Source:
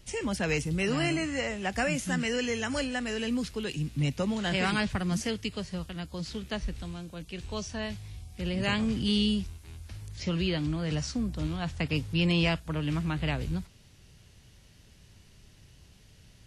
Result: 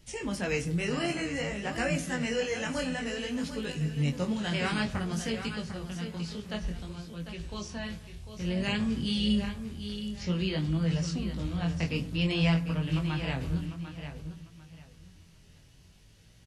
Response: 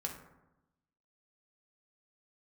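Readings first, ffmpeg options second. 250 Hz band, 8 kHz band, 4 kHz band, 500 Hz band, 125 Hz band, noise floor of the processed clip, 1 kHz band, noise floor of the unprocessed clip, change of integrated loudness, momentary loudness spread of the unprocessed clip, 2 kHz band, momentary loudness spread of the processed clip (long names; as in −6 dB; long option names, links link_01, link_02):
−0.5 dB, −2.0 dB, −2.0 dB, −1.5 dB, +0.5 dB, −56 dBFS, −2.5 dB, −57 dBFS, −1.0 dB, 11 LU, −2.0 dB, 11 LU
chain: -filter_complex "[0:a]aecho=1:1:748|1496|2244:0.316|0.0696|0.0153,flanger=delay=18:depth=6:speed=0.55,asplit=2[link_01][link_02];[1:a]atrim=start_sample=2205[link_03];[link_02][link_03]afir=irnorm=-1:irlink=0,volume=-5.5dB[link_04];[link_01][link_04]amix=inputs=2:normalize=0,volume=-2.5dB"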